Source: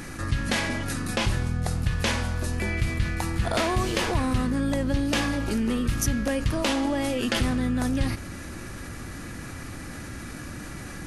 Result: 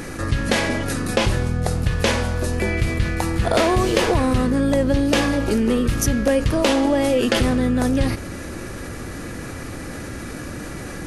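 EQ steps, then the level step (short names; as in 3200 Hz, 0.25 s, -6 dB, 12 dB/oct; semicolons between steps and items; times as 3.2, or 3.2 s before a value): bell 470 Hz +7.5 dB 1 oct; +4.5 dB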